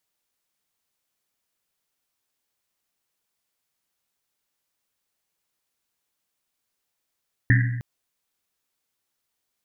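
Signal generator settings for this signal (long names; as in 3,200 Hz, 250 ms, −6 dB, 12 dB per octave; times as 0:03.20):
drum after Risset length 0.31 s, pitch 120 Hz, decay 1.27 s, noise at 1,800 Hz, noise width 380 Hz, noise 25%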